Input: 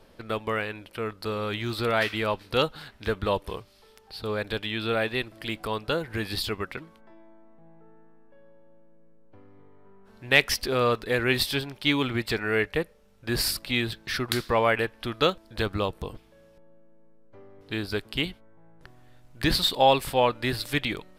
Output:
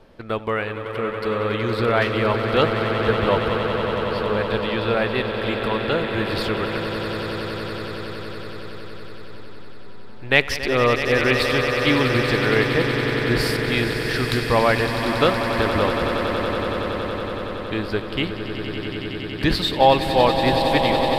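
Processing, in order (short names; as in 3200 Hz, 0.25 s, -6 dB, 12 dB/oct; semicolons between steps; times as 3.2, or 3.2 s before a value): LPF 2600 Hz 6 dB/oct; on a send: swelling echo 93 ms, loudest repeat 8, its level -11 dB; on the sum: gain +5 dB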